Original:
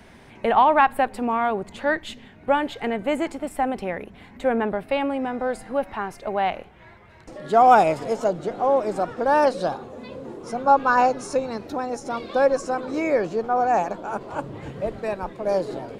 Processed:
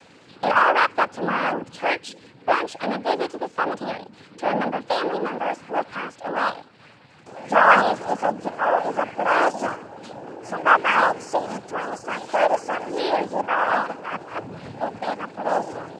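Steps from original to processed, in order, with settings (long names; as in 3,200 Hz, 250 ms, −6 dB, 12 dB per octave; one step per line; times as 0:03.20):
pitch shifter +4 semitones
cochlear-implant simulation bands 8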